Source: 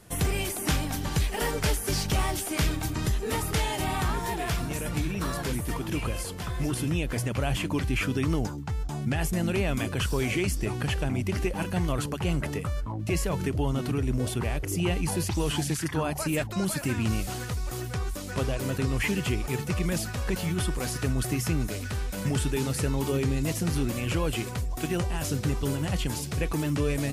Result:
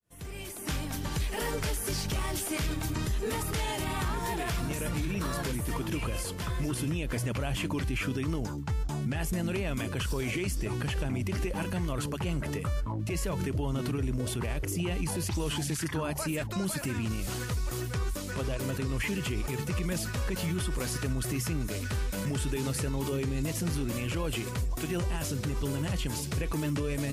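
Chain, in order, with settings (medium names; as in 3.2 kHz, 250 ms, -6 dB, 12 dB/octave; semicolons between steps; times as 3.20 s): fade-in on the opening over 1.45 s; band-stop 750 Hz, Q 12; peak limiter -23 dBFS, peak gain reduction 7.5 dB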